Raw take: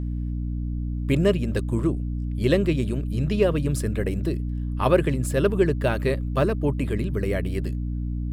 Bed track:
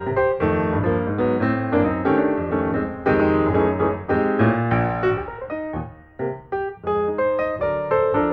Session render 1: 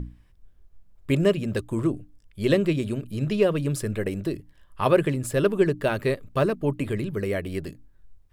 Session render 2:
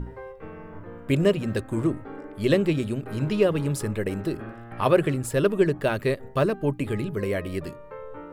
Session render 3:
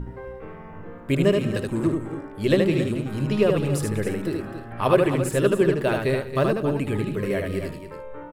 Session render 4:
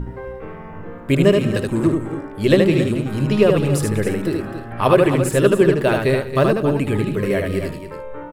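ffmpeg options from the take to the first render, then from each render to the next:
-af "bandreject=f=60:t=h:w=6,bandreject=f=120:t=h:w=6,bandreject=f=180:t=h:w=6,bandreject=f=240:t=h:w=6,bandreject=f=300:t=h:w=6"
-filter_complex "[1:a]volume=-21dB[a];[0:a][a]amix=inputs=2:normalize=0"
-af "aecho=1:1:76|194|275|326:0.668|0.141|0.299|0.1"
-af "volume=5.5dB,alimiter=limit=-2dB:level=0:latency=1"

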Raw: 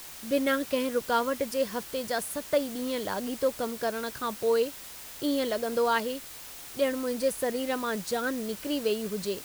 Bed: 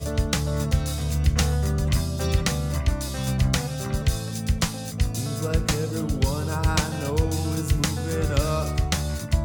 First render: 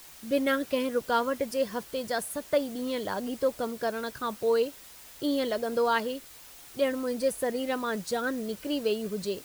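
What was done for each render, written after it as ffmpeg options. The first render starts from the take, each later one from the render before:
-af "afftdn=nr=6:nf=-44"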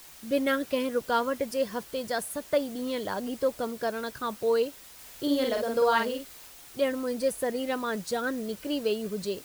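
-filter_complex "[0:a]asettb=1/sr,asplit=3[a][b][c];[a]atrim=end=4.944[d];[b]atrim=start=4.94:end=6.48,asetpts=PTS-STARTPTS,afade=t=in:d=0.004:c=qsin,afade=t=out:st=1.536:d=0.004:c=qsin,asplit=2[e][f];[f]adelay=49,volume=-3.5dB[g];[e][g]amix=inputs=2:normalize=0,atrim=end_sample=67914[h];[c]atrim=start=6.476[i];[d][h]acrossfade=d=0.004:c1=hsin:c2=qsin[j];[j][i]acrossfade=d=0.004:c1=qsin:c2=hsin"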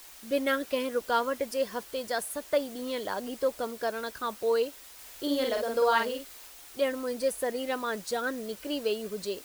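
-af "equalizer=f=130:w=0.93:g=-11.5"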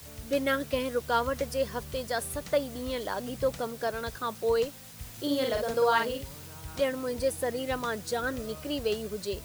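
-filter_complex "[1:a]volume=-21dB[a];[0:a][a]amix=inputs=2:normalize=0"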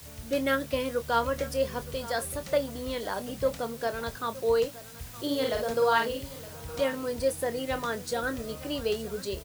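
-filter_complex "[0:a]asplit=2[a][b];[b]adelay=26,volume=-11dB[c];[a][c]amix=inputs=2:normalize=0,aecho=1:1:917:0.133"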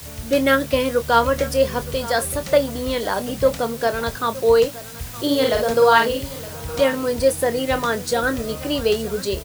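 -af "volume=10dB"

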